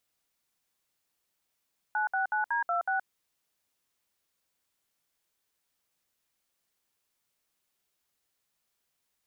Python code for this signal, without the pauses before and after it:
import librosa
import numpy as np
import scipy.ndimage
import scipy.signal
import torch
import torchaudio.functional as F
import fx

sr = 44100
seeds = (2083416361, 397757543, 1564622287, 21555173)

y = fx.dtmf(sr, digits='969D26', tone_ms=122, gap_ms=63, level_db=-28.5)